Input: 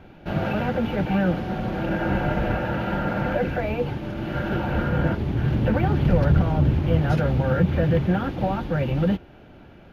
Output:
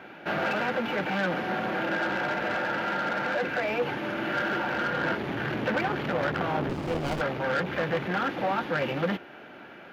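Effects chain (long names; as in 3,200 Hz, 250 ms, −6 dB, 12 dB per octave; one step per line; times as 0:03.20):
parametric band 1,700 Hz +8.5 dB 1.5 octaves
soft clipping −20.5 dBFS, distortion −10 dB
high-pass filter 270 Hz 12 dB per octave
speech leveller within 3 dB 0.5 s
0:06.69–0:07.21: windowed peak hold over 17 samples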